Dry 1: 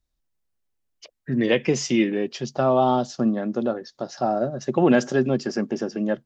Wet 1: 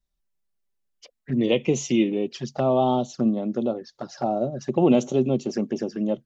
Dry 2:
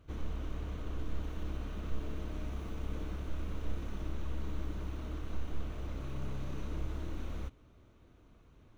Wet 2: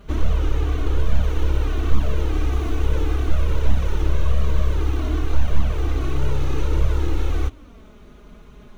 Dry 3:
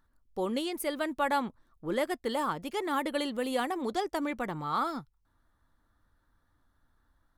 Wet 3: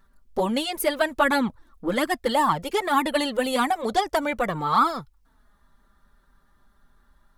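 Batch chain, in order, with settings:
touch-sensitive flanger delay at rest 5.1 ms, full sweep at -21.5 dBFS; normalise loudness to -24 LUFS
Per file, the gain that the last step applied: 0.0 dB, +19.5 dB, +12.5 dB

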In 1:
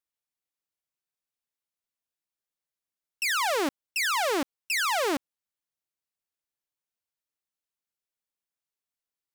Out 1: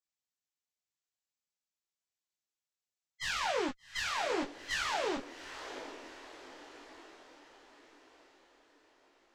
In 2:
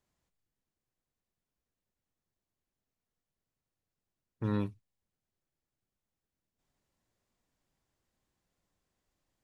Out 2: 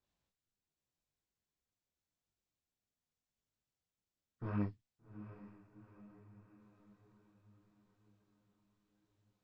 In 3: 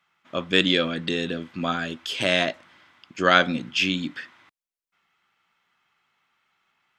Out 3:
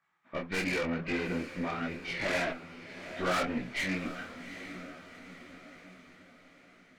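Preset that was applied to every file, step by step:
knee-point frequency compression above 1.1 kHz 1.5:1; dynamic bell 1.1 kHz, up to -5 dB, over -44 dBFS, Q 7.2; in parallel at -3 dB: hard clipper -20.5 dBFS; on the sum: valve stage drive 21 dB, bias 0.65; on a send: echo that smears into a reverb 778 ms, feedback 54%, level -12 dB; on the sum: detune thickener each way 30 cents; trim -3 dB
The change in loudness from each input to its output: -8.5 LU, -8.0 LU, -10.5 LU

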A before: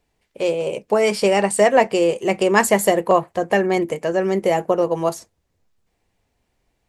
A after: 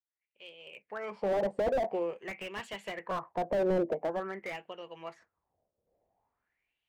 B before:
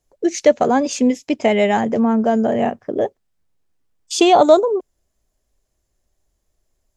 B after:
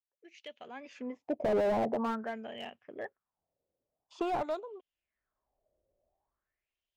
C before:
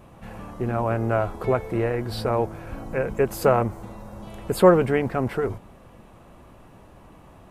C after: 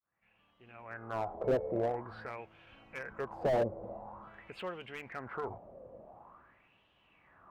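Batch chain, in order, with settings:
fade-in on the opening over 1.70 s; in parallel at -3 dB: compression, threshold -27 dBFS; on the sum: RIAA curve playback; wah-wah 0.47 Hz 540–3100 Hz, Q 5.9; slew-rate limiter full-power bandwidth 27 Hz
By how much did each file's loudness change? -15.0 LU, -17.5 LU, -14.0 LU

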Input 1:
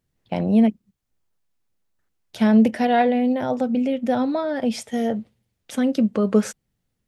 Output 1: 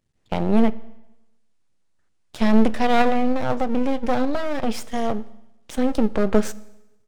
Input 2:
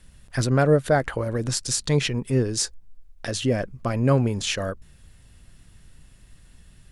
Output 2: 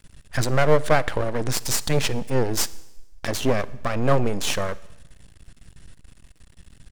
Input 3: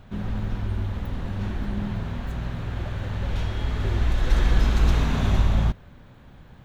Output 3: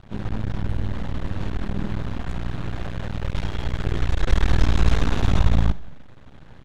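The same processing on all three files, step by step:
resampled via 22.05 kHz; half-wave rectifier; Schroeder reverb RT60 0.96 s, DRR 19 dB; peak normalisation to -3 dBFS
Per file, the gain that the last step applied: +3.5 dB, +5.5 dB, +4.5 dB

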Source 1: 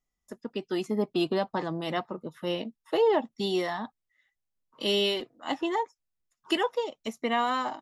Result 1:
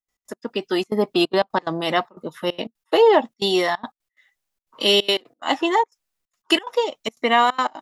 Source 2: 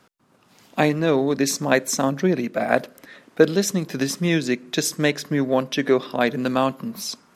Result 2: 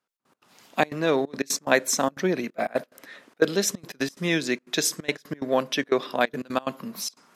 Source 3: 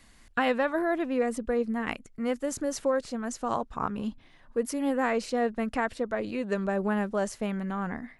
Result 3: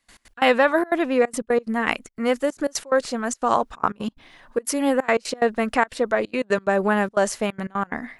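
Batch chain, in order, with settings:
bass shelf 260 Hz -11 dB; trance gate ".x.x.xxxxx.xxxx" 180 bpm -24 dB; peak normalisation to -3 dBFS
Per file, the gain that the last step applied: +11.5 dB, 0.0 dB, +11.0 dB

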